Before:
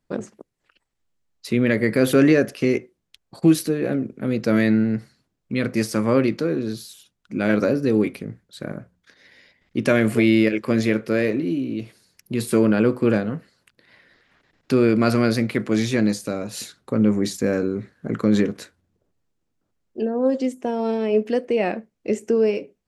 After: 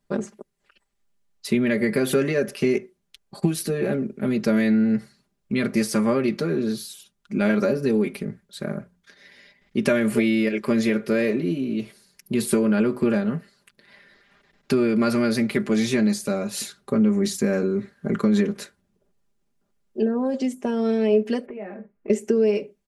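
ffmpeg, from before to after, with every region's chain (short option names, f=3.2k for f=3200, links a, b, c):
-filter_complex "[0:a]asettb=1/sr,asplit=3[a][b][c];[a]atrim=end=21.464[d];[b]atrim=start=21.46:end=22.1,asetpts=PTS-STARTPTS,afade=t=in:d=0.004:c=qsin,afade=t=out:st=0.636:d=0.004:c=qsin,lowpass=f=2.1k:w=0.5412,lowpass=f=2.1k:w=1.3066,asplit=2[e][f];[f]adelay=20,volume=-2dB[g];[e][g]amix=inputs=2:normalize=0,atrim=end_sample=28224,acompressor=threshold=-34dB:ratio=8:attack=3.2:release=140:knee=1:detection=peak[h];[c]atrim=start=22.096[i];[d][h]acrossfade=d=0.004:c1=hsin:c2=qsin[j];[j][i]acrossfade=d=0.004:c1=qsin:c2=hsin,equalizer=f=10k:w=2.8:g=3.5,acompressor=threshold=-18dB:ratio=6,aecho=1:1:5:0.71"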